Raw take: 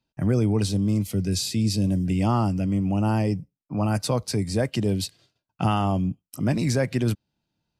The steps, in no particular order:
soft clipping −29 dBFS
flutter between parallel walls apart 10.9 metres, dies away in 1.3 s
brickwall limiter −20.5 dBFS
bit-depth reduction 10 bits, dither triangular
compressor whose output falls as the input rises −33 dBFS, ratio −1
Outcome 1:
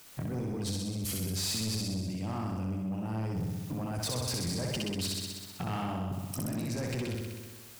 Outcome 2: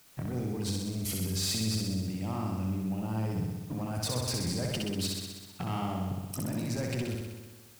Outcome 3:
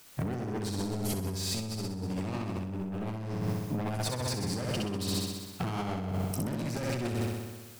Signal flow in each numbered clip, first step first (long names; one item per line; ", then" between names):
brickwall limiter, then bit-depth reduction, then compressor whose output falls as the input rises, then flutter between parallel walls, then soft clipping
brickwall limiter, then compressor whose output falls as the input rises, then soft clipping, then bit-depth reduction, then flutter between parallel walls
bit-depth reduction, then soft clipping, then brickwall limiter, then flutter between parallel walls, then compressor whose output falls as the input rises